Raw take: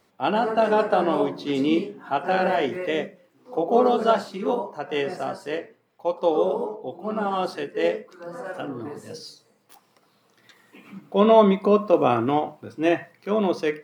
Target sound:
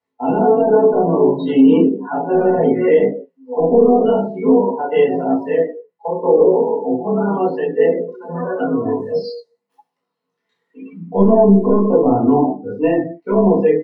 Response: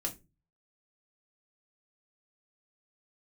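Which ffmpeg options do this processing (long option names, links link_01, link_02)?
-filter_complex "[0:a]highpass=120,acrossover=split=440[link_01][link_02];[link_02]acompressor=threshold=-34dB:ratio=16[link_03];[link_01][link_03]amix=inputs=2:normalize=0,asoftclip=type=tanh:threshold=-12.5dB,aecho=1:1:30|64.5|104.2|149.8|202.3:0.631|0.398|0.251|0.158|0.1,flanger=delay=17.5:depth=7.7:speed=0.91[link_04];[1:a]atrim=start_sample=2205,atrim=end_sample=4410,asetrate=66150,aresample=44100[link_05];[link_04][link_05]afir=irnorm=-1:irlink=0,afftdn=noise_reduction=29:noise_floor=-40,highshelf=frequency=7200:gain=-10.5,alimiter=level_in=17.5dB:limit=-1dB:release=50:level=0:latency=1,volume=-2dB"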